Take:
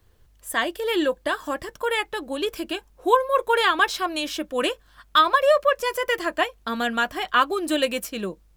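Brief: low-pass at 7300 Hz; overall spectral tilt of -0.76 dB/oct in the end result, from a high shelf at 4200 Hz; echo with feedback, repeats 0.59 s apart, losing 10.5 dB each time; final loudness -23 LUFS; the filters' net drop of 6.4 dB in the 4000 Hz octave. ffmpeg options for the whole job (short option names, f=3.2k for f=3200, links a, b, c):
-af "lowpass=7.3k,equalizer=f=4k:t=o:g=-6,highshelf=f=4.2k:g=-5.5,aecho=1:1:590|1180|1770:0.299|0.0896|0.0269,volume=1dB"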